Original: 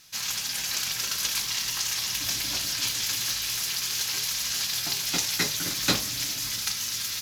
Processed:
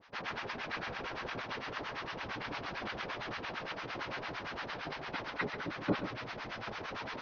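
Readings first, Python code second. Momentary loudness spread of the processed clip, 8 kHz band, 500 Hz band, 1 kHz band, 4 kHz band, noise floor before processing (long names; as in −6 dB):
4 LU, −36.0 dB, +2.0 dB, +1.0 dB, −19.0 dB, −33 dBFS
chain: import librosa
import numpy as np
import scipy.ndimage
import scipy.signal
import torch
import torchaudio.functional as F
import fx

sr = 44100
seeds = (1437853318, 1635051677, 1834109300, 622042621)

p1 = fx.cvsd(x, sr, bps=32000)
p2 = fx.spec_gate(p1, sr, threshold_db=-20, keep='strong')
p3 = scipy.signal.sosfilt(scipy.signal.butter(2, 1600.0, 'lowpass', fs=sr, output='sos'), p2)
p4 = fx.low_shelf(p3, sr, hz=170.0, db=-10.0)
p5 = fx.rider(p4, sr, range_db=10, speed_s=2.0)
p6 = fx.harmonic_tremolo(p5, sr, hz=8.8, depth_pct=100, crossover_hz=770.0)
p7 = p6 + fx.echo_single(p6, sr, ms=135, db=-9.5, dry=0)
y = F.gain(torch.from_numpy(p7), 3.5).numpy()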